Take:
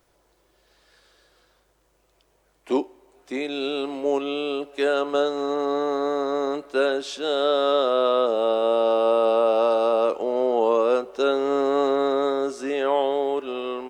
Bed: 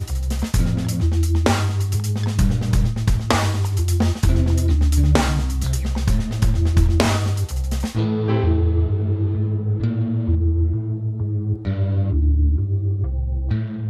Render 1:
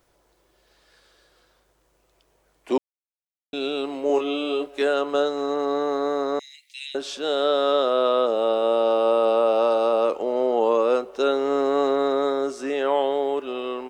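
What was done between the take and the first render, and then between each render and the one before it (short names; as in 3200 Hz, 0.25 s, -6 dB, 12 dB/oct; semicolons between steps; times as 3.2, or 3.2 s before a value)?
2.78–3.53 mute; 4.07–4.82 doubler 24 ms -4 dB; 6.39–6.95 steep high-pass 2000 Hz 96 dB/oct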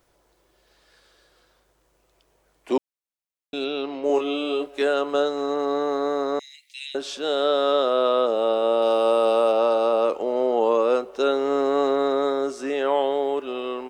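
3.64–4.04 Chebyshev low-pass 5600 Hz, order 4; 8.82–9.52 high shelf 5100 Hz +10.5 dB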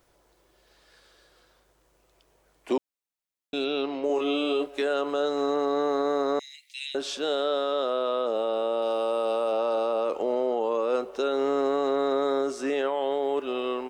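limiter -18 dBFS, peak gain reduction 8 dB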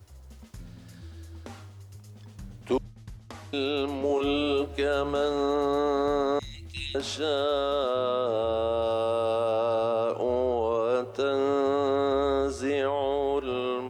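add bed -25.5 dB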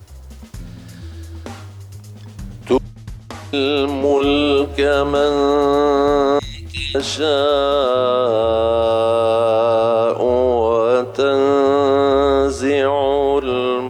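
gain +11 dB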